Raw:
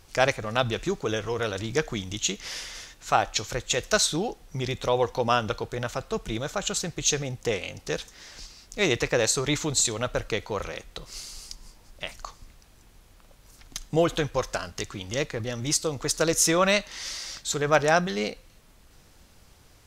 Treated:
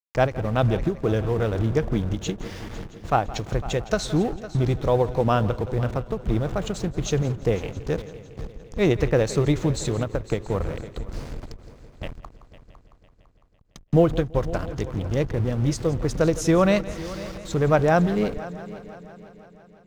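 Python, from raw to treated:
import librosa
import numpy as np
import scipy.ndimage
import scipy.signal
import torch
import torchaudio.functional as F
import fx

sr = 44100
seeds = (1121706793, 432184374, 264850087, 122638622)

y = fx.delta_hold(x, sr, step_db=-33.5)
y = fx.highpass(y, sr, hz=72.0, slope=6)
y = fx.tilt_eq(y, sr, slope=-4.0)
y = fx.echo_heads(y, sr, ms=168, heads='first and third', feedback_pct=57, wet_db=-17.5)
y = fx.end_taper(y, sr, db_per_s=210.0)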